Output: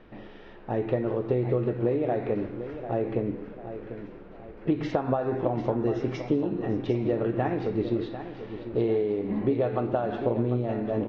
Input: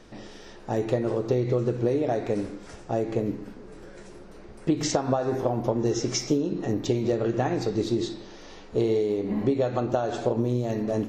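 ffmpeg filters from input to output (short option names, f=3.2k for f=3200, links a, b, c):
-af "lowpass=f=3k:w=0.5412,lowpass=f=3k:w=1.3066,aecho=1:1:746|1492|2238|2984:0.282|0.116|0.0474|0.0194,volume=-1.5dB"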